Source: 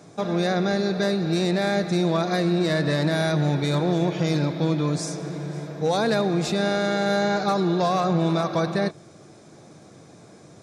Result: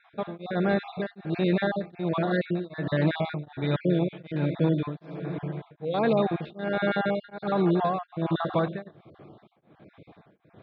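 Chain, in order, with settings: random holes in the spectrogram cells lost 32%; steep low-pass 3.5 kHz 48 dB/octave; tremolo of two beating tones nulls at 1.3 Hz

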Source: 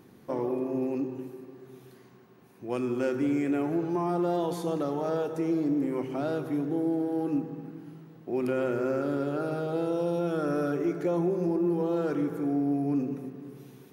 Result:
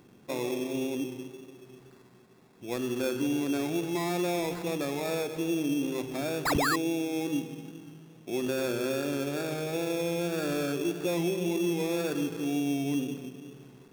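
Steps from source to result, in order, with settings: painted sound fall, 6.45–6.76 s, 1–5.5 kHz -25 dBFS; sample-rate reducer 3 kHz, jitter 0%; wow and flutter 23 cents; trim -2 dB

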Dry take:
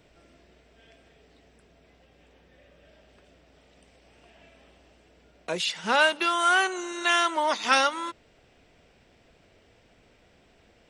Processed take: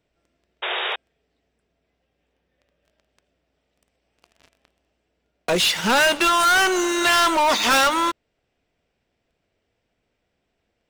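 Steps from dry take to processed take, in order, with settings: waveshaping leveller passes 5; painted sound noise, 0.62–0.96 s, 350–3800 Hz -21 dBFS; trim -4.5 dB

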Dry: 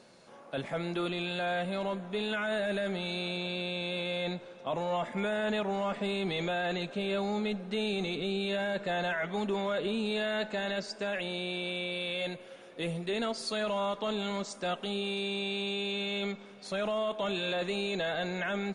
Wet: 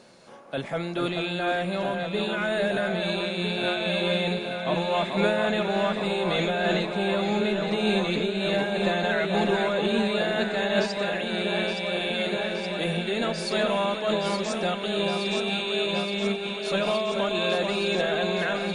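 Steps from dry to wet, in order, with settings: on a send: echo whose repeats swap between lows and highs 435 ms, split 2.1 kHz, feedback 87%, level -4.5 dB; on the sum: random flutter of the level, depth 60%; trim +8.5 dB

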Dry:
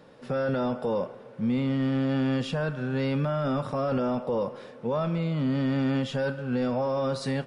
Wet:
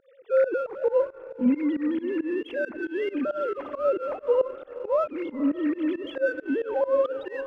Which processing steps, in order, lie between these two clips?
formants replaced by sine waves; echo that smears into a reverb 509 ms, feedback 46%, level -14 dB; in parallel at -9 dB: hysteresis with a dead band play -31 dBFS; on the sum: volume shaper 136 bpm, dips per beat 2, -23 dB, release 128 ms

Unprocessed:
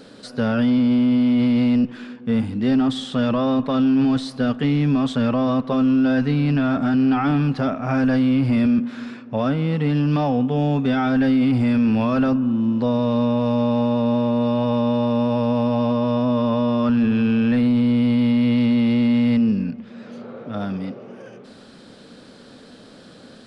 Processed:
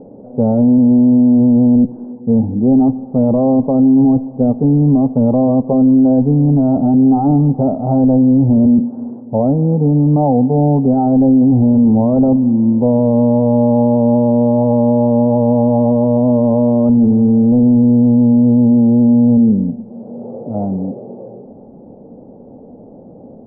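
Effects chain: Chebyshev low-pass 850 Hz, order 5; trim +8.5 dB

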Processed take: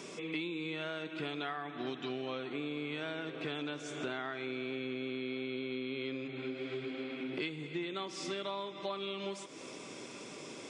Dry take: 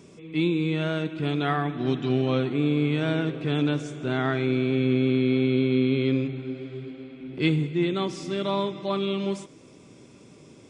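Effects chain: frequency weighting A; compression 12:1, threshold -44 dBFS, peak gain reduction 22.5 dB; trim +8.5 dB

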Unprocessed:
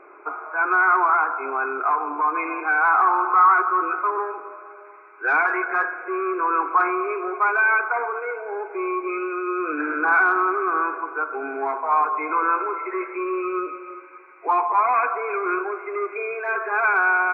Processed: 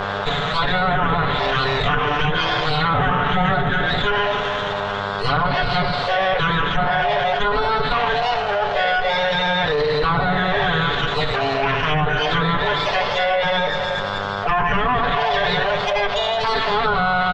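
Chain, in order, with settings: comb filter that takes the minimum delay 0.32 ms; formant shift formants +6 st; low-pass that closes with the level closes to 1.4 kHz, closed at -18.5 dBFS; distance through air 150 m; comb 6.9 ms, depth 88%; mains buzz 100 Hz, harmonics 16, -45 dBFS 0 dB/octave; peaking EQ 310 Hz -14.5 dB 0.31 oct; level flattener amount 70%

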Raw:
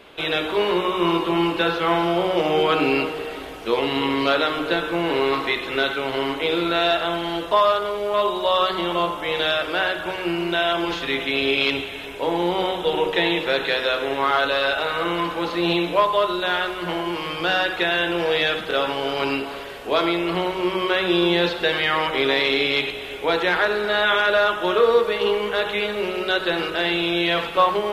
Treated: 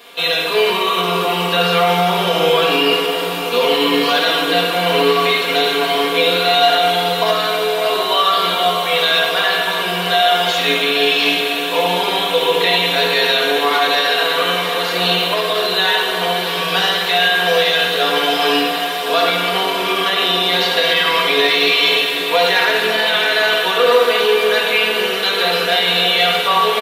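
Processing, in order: tilt EQ +3 dB/octave; small resonant body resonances 360/670/1000 Hz, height 7 dB; reverberation RT60 1.4 s, pre-delay 3 ms, DRR 0 dB; peak limiter -7.5 dBFS, peak gain reduction 6.5 dB; treble shelf 10 kHz +5.5 dB; comb 4.4 ms, depth 77%; echo that smears into a reverb 659 ms, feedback 78%, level -10.5 dB; speed mistake 24 fps film run at 25 fps

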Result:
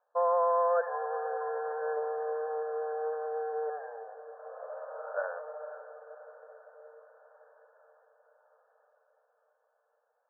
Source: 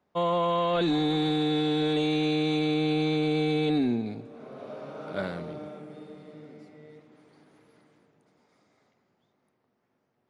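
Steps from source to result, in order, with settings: brick-wall FIR band-pass 450–1800 Hz; vibrato 1.3 Hz 5.7 cents; echo that smears into a reverb 528 ms, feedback 62%, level -14.5 dB

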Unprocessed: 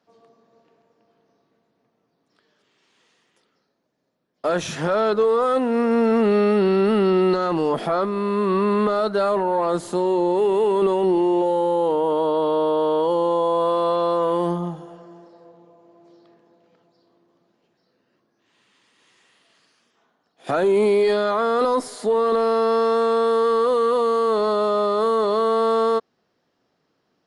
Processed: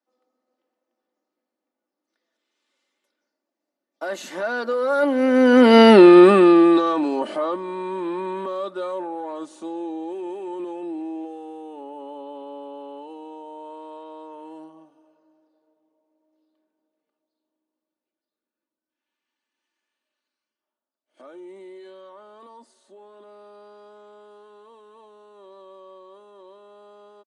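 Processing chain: Doppler pass-by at 5.96 s, 33 m/s, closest 2.1 m; high-pass 230 Hz 24 dB/octave; comb 3.4 ms, depth 53%; loudness maximiser +23 dB; trim -1 dB

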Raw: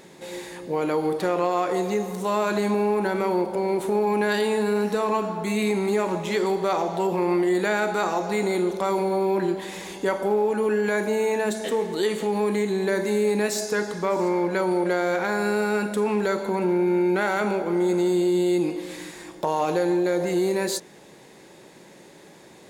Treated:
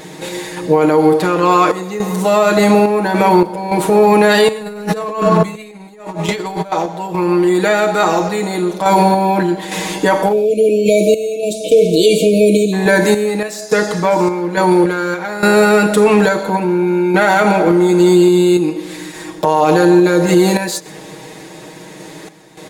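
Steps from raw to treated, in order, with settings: 4.48–6.72 s: compressor with a negative ratio -30 dBFS, ratio -0.5; comb 6.4 ms, depth 90%; random-step tremolo, depth 85%; 10.33–12.73 s: spectral selection erased 710–2200 Hz; delay 125 ms -22 dB; loudness maximiser +15.5 dB; trim -1 dB

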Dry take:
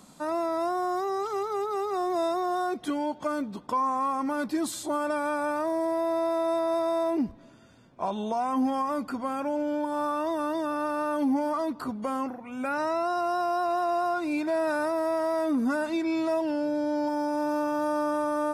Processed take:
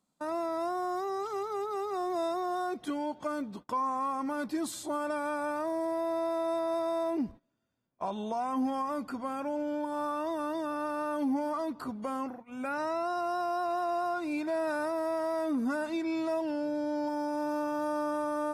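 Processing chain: gate -40 dBFS, range -22 dB; trim -4.5 dB

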